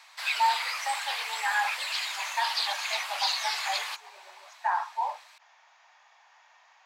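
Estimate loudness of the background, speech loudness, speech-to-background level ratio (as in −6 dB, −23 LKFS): −30.0 LKFS, −32.0 LKFS, −2.0 dB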